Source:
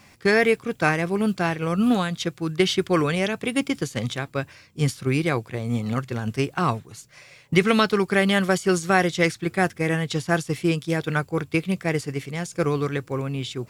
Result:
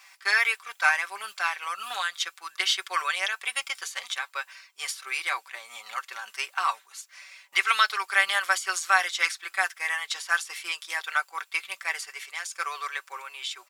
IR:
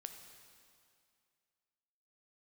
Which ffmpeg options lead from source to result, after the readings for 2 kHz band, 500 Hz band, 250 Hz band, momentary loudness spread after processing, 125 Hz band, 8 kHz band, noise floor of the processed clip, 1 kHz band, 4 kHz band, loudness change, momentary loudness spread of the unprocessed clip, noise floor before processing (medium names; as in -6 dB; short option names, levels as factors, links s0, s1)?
+1.5 dB, -21.0 dB, under -35 dB, 13 LU, under -40 dB, +1.5 dB, -61 dBFS, -1.5 dB, +1.0 dB, -4.0 dB, 9 LU, -52 dBFS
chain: -af "highpass=f=960:w=0.5412,highpass=f=960:w=1.3066,aecho=1:1:5.2:0.6"